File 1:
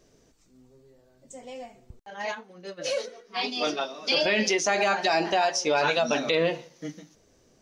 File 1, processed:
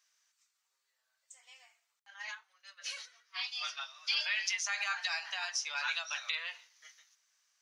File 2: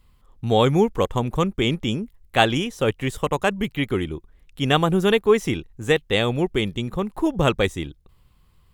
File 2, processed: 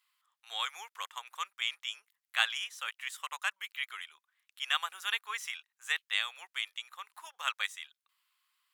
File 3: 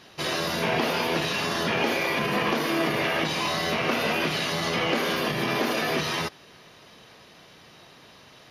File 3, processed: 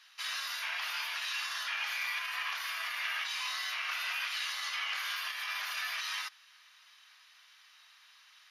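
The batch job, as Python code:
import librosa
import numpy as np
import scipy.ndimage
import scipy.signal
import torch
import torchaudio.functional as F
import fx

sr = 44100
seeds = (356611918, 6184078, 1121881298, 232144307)

y = scipy.signal.sosfilt(scipy.signal.cheby2(4, 70, 270.0, 'highpass', fs=sr, output='sos'), x)
y = F.gain(torch.from_numpy(y), -6.5).numpy()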